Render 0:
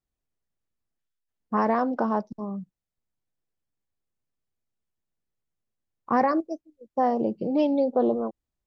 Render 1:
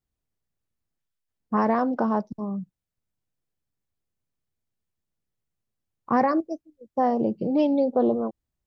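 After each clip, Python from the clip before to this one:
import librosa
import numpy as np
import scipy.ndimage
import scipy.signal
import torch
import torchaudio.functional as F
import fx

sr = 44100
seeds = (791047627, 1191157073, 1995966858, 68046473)

y = fx.peak_eq(x, sr, hz=100.0, db=5.5, octaves=2.2)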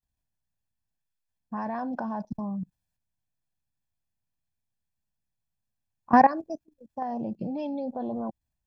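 y = fx.rider(x, sr, range_db=3, speed_s=2.0)
y = y + 0.63 * np.pad(y, (int(1.2 * sr / 1000.0), 0))[:len(y)]
y = fx.level_steps(y, sr, step_db=17)
y = F.gain(torch.from_numpy(y), 2.5).numpy()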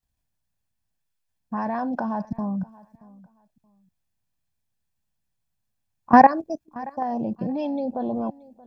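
y = fx.echo_feedback(x, sr, ms=627, feedback_pct=22, wet_db=-22)
y = F.gain(torch.from_numpy(y), 5.0).numpy()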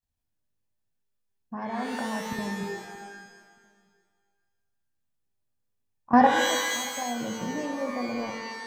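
y = fx.rev_shimmer(x, sr, seeds[0], rt60_s=1.2, semitones=12, shimmer_db=-2, drr_db=4.0)
y = F.gain(torch.from_numpy(y), -7.0).numpy()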